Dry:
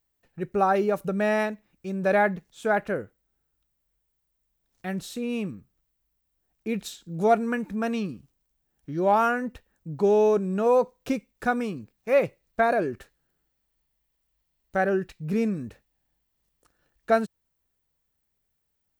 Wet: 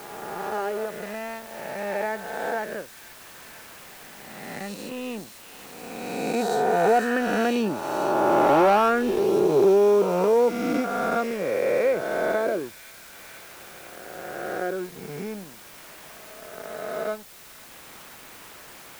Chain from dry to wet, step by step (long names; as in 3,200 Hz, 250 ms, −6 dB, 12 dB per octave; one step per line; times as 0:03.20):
peak hold with a rise ahead of every peak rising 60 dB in 2.45 s
source passing by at 0:08.43, 17 m/s, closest 16 metres
leveller curve on the samples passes 2
low-shelf EQ 160 Hz −7 dB
delay with a high-pass on its return 496 ms, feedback 65%, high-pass 4,400 Hz, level −5 dB
in parallel at −8 dB: bit-depth reduction 6 bits, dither triangular
on the sum: dynamic equaliser 390 Hz, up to +6 dB, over −31 dBFS, Q 1.1
multiband upward and downward compressor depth 40%
level −5.5 dB